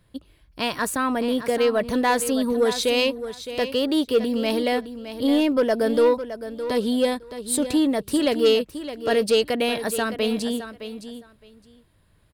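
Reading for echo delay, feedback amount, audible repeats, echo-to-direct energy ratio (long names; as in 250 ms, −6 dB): 614 ms, 16%, 2, −11.5 dB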